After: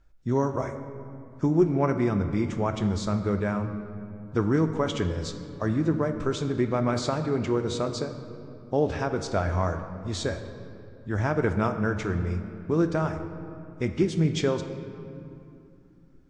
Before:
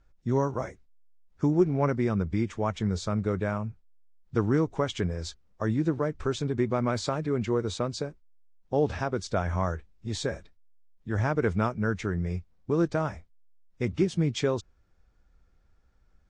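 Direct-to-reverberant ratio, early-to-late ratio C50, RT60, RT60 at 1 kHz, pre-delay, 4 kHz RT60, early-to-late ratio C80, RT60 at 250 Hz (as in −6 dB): 7.0 dB, 9.0 dB, 2.6 s, 2.5 s, 3 ms, 1.6 s, 10.0 dB, 3.8 s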